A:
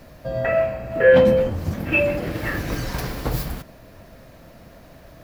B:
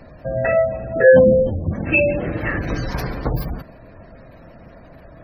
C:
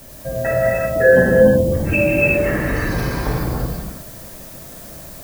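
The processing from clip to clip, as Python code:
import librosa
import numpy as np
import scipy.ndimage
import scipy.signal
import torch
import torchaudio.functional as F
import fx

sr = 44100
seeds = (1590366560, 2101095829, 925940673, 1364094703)

y1 = fx.spec_gate(x, sr, threshold_db=-25, keep='strong')
y1 = y1 * 10.0 ** (3.0 / 20.0)
y2 = fx.dmg_noise_colour(y1, sr, seeds[0], colour='blue', level_db=-42.0)
y2 = fx.rev_gated(y2, sr, seeds[1], gate_ms=410, shape='flat', drr_db=-5.0)
y2 = y2 * 10.0 ** (-3.0 / 20.0)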